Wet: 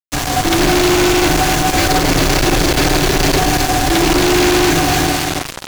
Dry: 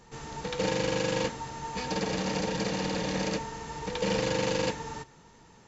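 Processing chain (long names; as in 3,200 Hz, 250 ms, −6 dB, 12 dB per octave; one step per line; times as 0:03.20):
frequency shifter −160 Hz
delay that swaps between a low-pass and a high-pass 134 ms, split 810 Hz, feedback 76%, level −6 dB
fuzz pedal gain 44 dB, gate −44 dBFS
harmonic generator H 7 −11 dB, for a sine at −9 dBFS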